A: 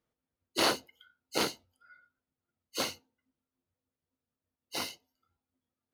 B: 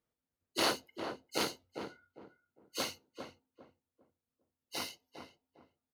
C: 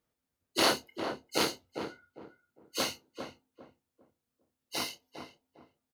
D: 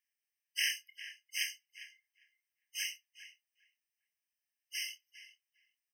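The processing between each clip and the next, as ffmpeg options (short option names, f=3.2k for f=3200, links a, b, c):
-filter_complex "[0:a]asplit=2[a][b];[b]adelay=403,lowpass=f=970:p=1,volume=-5.5dB,asplit=2[c][d];[d]adelay=403,lowpass=f=970:p=1,volume=0.3,asplit=2[e][f];[f]adelay=403,lowpass=f=970:p=1,volume=0.3,asplit=2[g][h];[h]adelay=403,lowpass=f=970:p=1,volume=0.3[i];[a][c][e][g][i]amix=inputs=5:normalize=0,volume=-3.5dB"
-filter_complex "[0:a]asplit=2[a][b];[b]adelay=28,volume=-11dB[c];[a][c]amix=inputs=2:normalize=0,volume=4.5dB"
-af "afftfilt=real='re*eq(mod(floor(b*sr/1024/1600),2),1)':imag='im*eq(mod(floor(b*sr/1024/1600),2),1)':win_size=1024:overlap=0.75"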